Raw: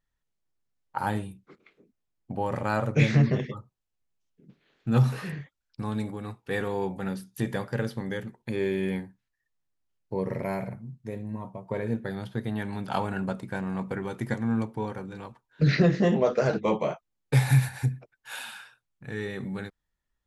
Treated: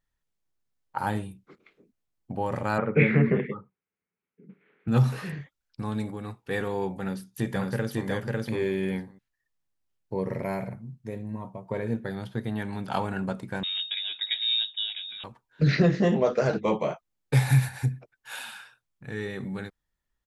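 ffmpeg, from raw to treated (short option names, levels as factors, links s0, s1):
-filter_complex "[0:a]asettb=1/sr,asplit=3[s0][s1][s2];[s0]atrim=end=2.784[s3];[s1]atrim=start=2.78:end=4.88,asetpts=PTS-STARTPTS,afade=t=in:d=0.004:c=qsin,afade=t=out:st=2.096:d=0.004:c=qsin,highpass=120,equalizer=f=120:t=q:w=4:g=-6,equalizer=f=190:t=q:w=4:g=9,equalizer=f=430:t=q:w=4:g=9,equalizer=f=650:t=q:w=4:g=-5,equalizer=f=1400:t=q:w=4:g=5,equalizer=f=2200:t=q:w=4:g=8,lowpass=f=2500:w=0.5412,lowpass=f=2500:w=1.3066[s4];[s2]atrim=start=4.876[s5];[s3][s4]acrossfade=d=0.004:c1=hsin:c2=qsin[s6];[s6][s5]acrossfade=d=0.004:c1=qsin:c2=hsin,asplit=2[s7][s8];[s8]afade=t=in:st=7:d=0.01,afade=t=out:st=8.08:d=0.01,aecho=0:1:550|1100:0.891251|0.0891251[s9];[s7][s9]amix=inputs=2:normalize=0,asettb=1/sr,asplit=3[s10][s11][s12];[s10]atrim=end=13.634[s13];[s11]atrim=start=13.63:end=15.24,asetpts=PTS-STARTPTS,afade=t=in:d=0.004:c=qsin,afade=t=out:st=1.606:d=0.004:c=qsin,lowpass=f=3300:t=q:w=0.5098,lowpass=f=3300:t=q:w=0.6013,lowpass=f=3300:t=q:w=0.9,lowpass=f=3300:t=q:w=2.563,afreqshift=-3900[s14];[s12]atrim=start=15.236[s15];[s13][s14]acrossfade=d=0.004:c1=hsin:c2=qsin[s16];[s16][s15]acrossfade=d=0.004:c1=qsin:c2=hsin"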